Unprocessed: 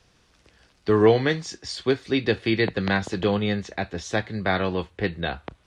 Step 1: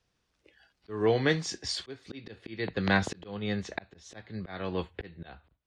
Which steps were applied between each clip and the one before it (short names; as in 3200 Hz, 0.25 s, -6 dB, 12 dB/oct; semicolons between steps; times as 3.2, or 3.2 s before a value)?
spectral noise reduction 16 dB; auto swell 0.575 s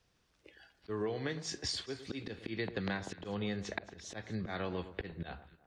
compressor 12:1, threshold -36 dBFS, peak gain reduction 17 dB; echo with dull and thin repeats by turns 0.109 s, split 1400 Hz, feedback 53%, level -12 dB; gain +2.5 dB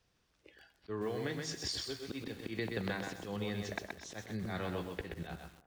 lo-fi delay 0.127 s, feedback 35%, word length 9-bit, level -4 dB; gain -1.5 dB